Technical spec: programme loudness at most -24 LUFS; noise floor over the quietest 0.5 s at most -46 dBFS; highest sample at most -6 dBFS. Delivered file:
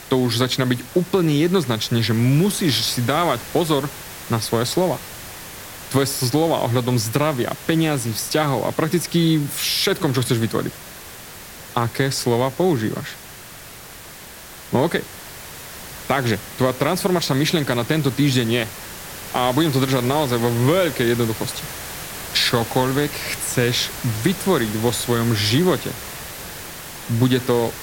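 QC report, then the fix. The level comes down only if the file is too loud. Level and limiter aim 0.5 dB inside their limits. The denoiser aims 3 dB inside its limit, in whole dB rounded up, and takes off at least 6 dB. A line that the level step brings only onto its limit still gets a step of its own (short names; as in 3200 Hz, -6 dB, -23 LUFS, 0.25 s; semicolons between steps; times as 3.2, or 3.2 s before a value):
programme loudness -20.0 LUFS: fail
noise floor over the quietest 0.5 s -39 dBFS: fail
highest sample -4.0 dBFS: fail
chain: denoiser 6 dB, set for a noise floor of -39 dBFS; gain -4.5 dB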